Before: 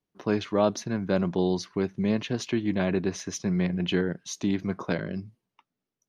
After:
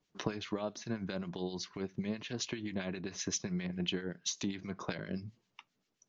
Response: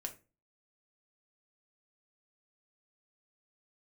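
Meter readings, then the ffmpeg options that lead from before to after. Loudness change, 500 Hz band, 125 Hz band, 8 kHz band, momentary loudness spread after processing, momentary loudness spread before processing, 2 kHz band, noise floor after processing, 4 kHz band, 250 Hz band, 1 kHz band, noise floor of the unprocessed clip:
-10.5 dB, -13.0 dB, -11.0 dB, n/a, 5 LU, 6 LU, -8.5 dB, -82 dBFS, -3.0 dB, -11.5 dB, -12.0 dB, under -85 dBFS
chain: -filter_complex "[0:a]equalizer=f=4.7k:t=o:w=2.8:g=6.5,acompressor=threshold=-38dB:ratio=12,acrossover=split=1400[a][b];[a]aeval=exprs='val(0)*(1-0.7/2+0.7/2*cos(2*PI*7.6*n/s))':c=same[c];[b]aeval=exprs='val(0)*(1-0.7/2-0.7/2*cos(2*PI*7.6*n/s))':c=same[d];[c][d]amix=inputs=2:normalize=0,asplit=2[e][f];[1:a]atrim=start_sample=2205,atrim=end_sample=3528[g];[f][g]afir=irnorm=-1:irlink=0,volume=-13.5dB[h];[e][h]amix=inputs=2:normalize=0,aresample=16000,aresample=44100,volume=6dB"

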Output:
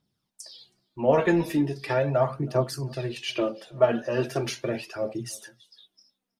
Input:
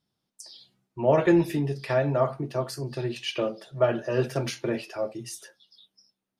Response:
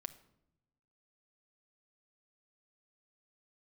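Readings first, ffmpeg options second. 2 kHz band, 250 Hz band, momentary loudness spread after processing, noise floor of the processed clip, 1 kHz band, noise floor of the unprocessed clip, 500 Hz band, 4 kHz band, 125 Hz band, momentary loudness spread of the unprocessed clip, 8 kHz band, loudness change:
+1.0 dB, -0.5 dB, 15 LU, -82 dBFS, +1.0 dB, -83 dBFS, +0.5 dB, +0.5 dB, -0.5 dB, 18 LU, +1.5 dB, 0.0 dB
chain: -filter_complex "[0:a]aphaser=in_gain=1:out_gain=1:delay=4.6:decay=0.49:speed=0.39:type=triangular,asplit=2[a][b];[b]adelay=320.7,volume=-26dB,highshelf=f=4k:g=-7.22[c];[a][c]amix=inputs=2:normalize=0"

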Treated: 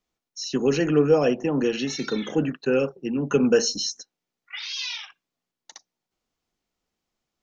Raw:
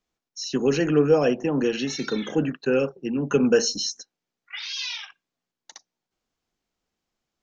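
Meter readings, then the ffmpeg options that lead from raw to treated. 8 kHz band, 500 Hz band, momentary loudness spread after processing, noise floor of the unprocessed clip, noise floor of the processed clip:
n/a, 0.0 dB, 15 LU, under -85 dBFS, under -85 dBFS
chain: -af "bandreject=f=1.6k:w=21"

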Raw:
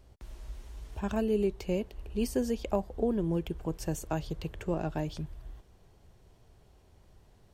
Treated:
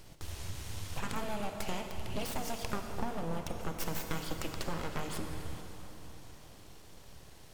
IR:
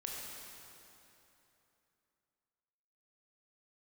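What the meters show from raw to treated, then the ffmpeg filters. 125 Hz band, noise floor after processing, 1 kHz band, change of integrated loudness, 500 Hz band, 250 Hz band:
-4.5 dB, -53 dBFS, +1.5 dB, -6.5 dB, -9.0 dB, -9.0 dB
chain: -filter_complex "[0:a]tiltshelf=f=1.5k:g=-5,acompressor=threshold=-42dB:ratio=6,aeval=exprs='abs(val(0))':c=same,asplit=2[a][b];[1:a]atrim=start_sample=2205,asetrate=33075,aresample=44100[c];[b][c]afir=irnorm=-1:irlink=0,volume=-0.5dB[d];[a][d]amix=inputs=2:normalize=0,volume=6dB"

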